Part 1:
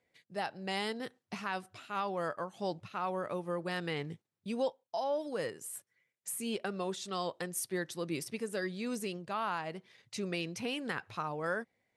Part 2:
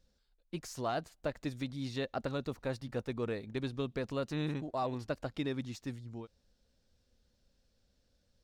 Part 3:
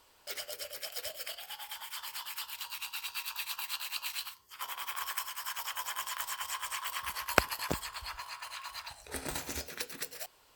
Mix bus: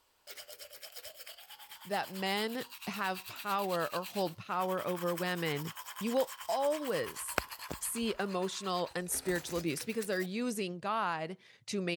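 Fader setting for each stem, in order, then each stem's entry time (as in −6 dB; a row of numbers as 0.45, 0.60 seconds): +2.0 dB, muted, −7.5 dB; 1.55 s, muted, 0.00 s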